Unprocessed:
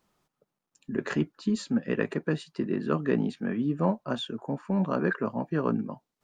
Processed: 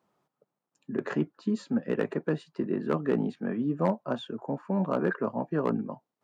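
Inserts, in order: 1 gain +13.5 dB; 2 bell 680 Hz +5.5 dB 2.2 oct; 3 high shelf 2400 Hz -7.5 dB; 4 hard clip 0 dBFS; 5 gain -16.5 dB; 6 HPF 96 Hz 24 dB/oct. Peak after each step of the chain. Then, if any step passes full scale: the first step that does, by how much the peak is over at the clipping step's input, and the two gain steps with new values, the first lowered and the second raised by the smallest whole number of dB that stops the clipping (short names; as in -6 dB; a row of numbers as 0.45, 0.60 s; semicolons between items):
+3.5, +6.0, +5.5, 0.0, -16.5, -12.5 dBFS; step 1, 5.5 dB; step 1 +7.5 dB, step 5 -10.5 dB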